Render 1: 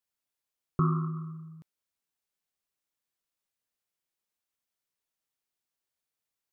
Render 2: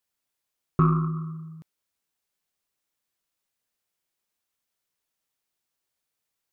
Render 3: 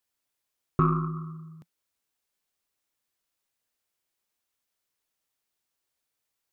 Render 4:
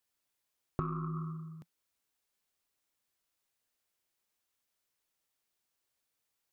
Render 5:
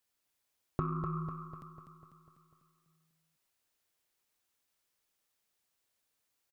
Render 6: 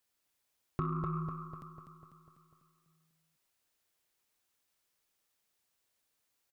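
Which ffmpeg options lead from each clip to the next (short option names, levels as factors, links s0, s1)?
-af "aeval=exprs='0.178*(cos(1*acos(clip(val(0)/0.178,-1,1)))-cos(1*PI/2))+0.00794*(cos(3*acos(clip(val(0)/0.178,-1,1)))-cos(3*PI/2))+0.00398*(cos(4*acos(clip(val(0)/0.178,-1,1)))-cos(4*PI/2))':c=same,volume=2.11"
-af "equalizer=f=170:t=o:w=0.22:g=-7"
-af "acompressor=threshold=0.0282:ratio=8,volume=0.891"
-af "aecho=1:1:248|496|744|992|1240|1488|1736:0.473|0.26|0.143|0.0787|0.0433|0.0238|0.0131,volume=1.12"
-af "asoftclip=type=tanh:threshold=0.0708,volume=1.12"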